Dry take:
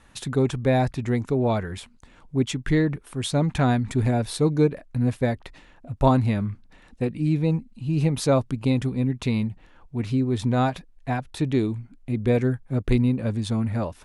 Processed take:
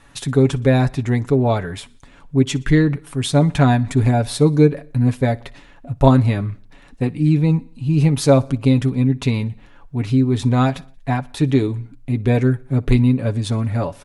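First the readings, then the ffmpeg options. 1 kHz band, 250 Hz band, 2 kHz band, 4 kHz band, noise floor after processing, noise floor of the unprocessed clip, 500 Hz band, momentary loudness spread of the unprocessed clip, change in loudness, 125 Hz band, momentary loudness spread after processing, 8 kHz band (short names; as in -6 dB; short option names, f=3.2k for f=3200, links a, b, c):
+4.5 dB, +6.0 dB, +5.5 dB, +5.5 dB, -46 dBFS, -54 dBFS, +5.0 dB, 9 LU, +6.5 dB, +7.5 dB, 10 LU, +5.5 dB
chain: -filter_complex "[0:a]aecho=1:1:7.1:0.5,asplit=2[a][b];[b]aecho=0:1:60|120|180|240:0.0631|0.0347|0.0191|0.0105[c];[a][c]amix=inputs=2:normalize=0,volume=4.5dB"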